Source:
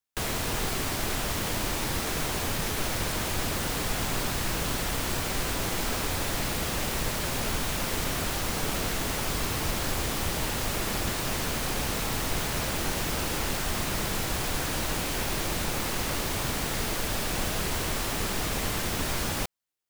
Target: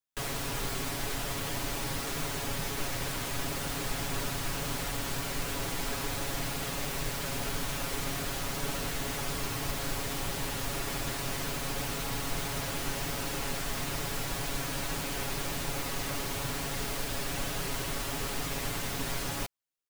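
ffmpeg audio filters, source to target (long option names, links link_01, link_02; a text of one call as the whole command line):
ffmpeg -i in.wav -af "aecho=1:1:7.2:0.76,volume=-6.5dB" out.wav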